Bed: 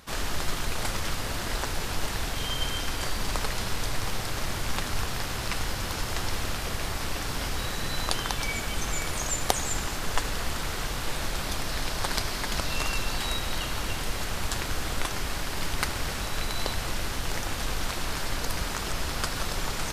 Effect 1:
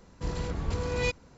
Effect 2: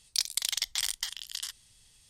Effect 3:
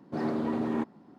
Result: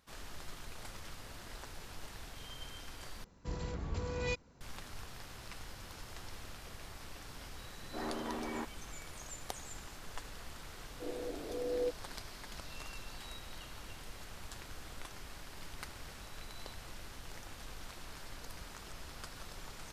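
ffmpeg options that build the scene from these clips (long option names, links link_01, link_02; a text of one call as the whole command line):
ffmpeg -i bed.wav -i cue0.wav -i cue1.wav -i cue2.wav -filter_complex "[1:a]asplit=2[link_01][link_02];[0:a]volume=-18dB[link_03];[3:a]highpass=frequency=810:poles=1[link_04];[link_02]asuperpass=centerf=440:order=12:qfactor=0.9[link_05];[link_03]asplit=2[link_06][link_07];[link_06]atrim=end=3.244[link_08];[link_01]atrim=end=1.37,asetpts=PTS-STARTPTS,volume=-7.5dB[link_09];[link_07]atrim=start=4.606[link_10];[link_04]atrim=end=1.18,asetpts=PTS-STARTPTS,volume=-2.5dB,afade=type=in:duration=0.004:curve=hsin,afade=type=out:start_time=1.176:duration=0.004:curve=hsin,adelay=7810[link_11];[link_05]atrim=end=1.37,asetpts=PTS-STARTPTS,volume=-2dB,afade=type=in:duration=0.004:curve=hsin,afade=type=out:start_time=1.366:duration=0.004:curve=hsin,adelay=10790[link_12];[link_08][link_09]acrossfade=duration=0.004:curve1=hsin:curve2=hsin[link_13];[link_13][link_10]acrossfade=duration=0.004:curve1=hsin:curve2=hsin[link_14];[link_14][link_11][link_12]amix=inputs=3:normalize=0" out.wav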